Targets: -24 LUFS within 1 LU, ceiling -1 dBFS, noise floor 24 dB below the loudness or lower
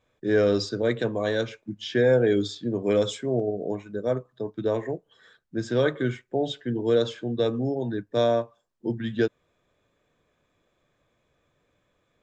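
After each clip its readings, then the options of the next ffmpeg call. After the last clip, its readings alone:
loudness -26.5 LUFS; peak -11.0 dBFS; loudness target -24.0 LUFS
-> -af "volume=2.5dB"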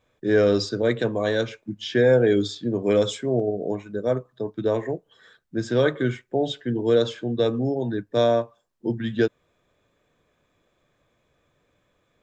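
loudness -24.0 LUFS; peak -8.5 dBFS; noise floor -70 dBFS

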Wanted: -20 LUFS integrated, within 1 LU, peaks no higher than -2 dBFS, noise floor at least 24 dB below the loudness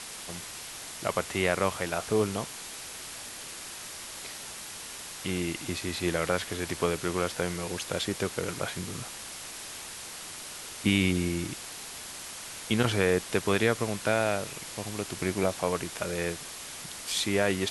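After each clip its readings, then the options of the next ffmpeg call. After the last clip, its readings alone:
noise floor -42 dBFS; noise floor target -55 dBFS; loudness -31.0 LUFS; peak -9.5 dBFS; loudness target -20.0 LUFS
-> -af "afftdn=nr=13:nf=-42"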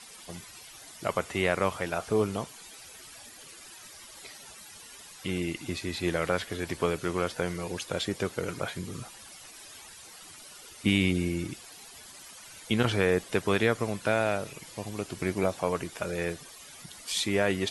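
noise floor -49 dBFS; noise floor target -54 dBFS
-> -af "afftdn=nr=6:nf=-49"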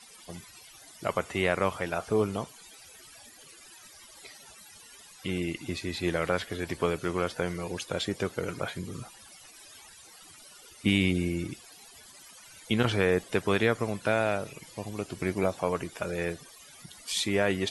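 noise floor -52 dBFS; noise floor target -54 dBFS
-> -af "afftdn=nr=6:nf=-52"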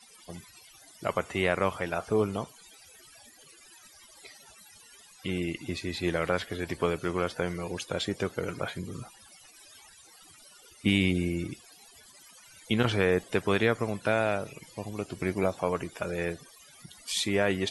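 noise floor -55 dBFS; loudness -30.0 LUFS; peak -10.0 dBFS; loudness target -20.0 LUFS
-> -af "volume=10dB,alimiter=limit=-2dB:level=0:latency=1"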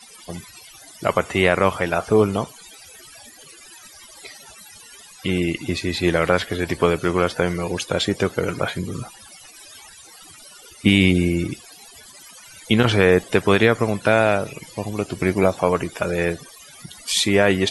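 loudness -20.5 LUFS; peak -2.0 dBFS; noise floor -45 dBFS

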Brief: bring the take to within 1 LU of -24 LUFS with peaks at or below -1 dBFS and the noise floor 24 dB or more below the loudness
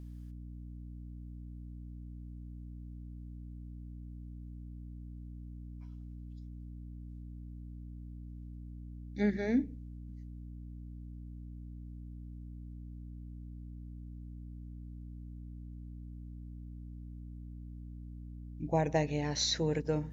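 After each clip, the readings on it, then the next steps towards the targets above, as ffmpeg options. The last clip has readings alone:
hum 60 Hz; harmonics up to 300 Hz; hum level -43 dBFS; loudness -41.0 LUFS; peak -17.5 dBFS; loudness target -24.0 LUFS
-> -af "bandreject=f=60:t=h:w=6,bandreject=f=120:t=h:w=6,bandreject=f=180:t=h:w=6,bandreject=f=240:t=h:w=6,bandreject=f=300:t=h:w=6"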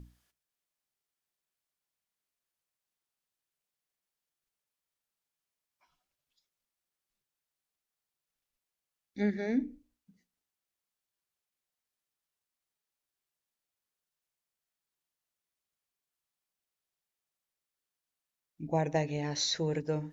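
hum none; loudness -32.5 LUFS; peak -17.5 dBFS; loudness target -24.0 LUFS
-> -af "volume=8.5dB"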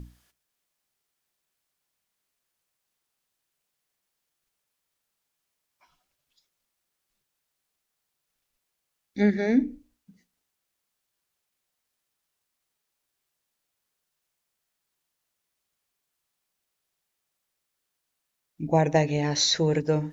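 loudness -24.0 LUFS; peak -9.0 dBFS; noise floor -82 dBFS

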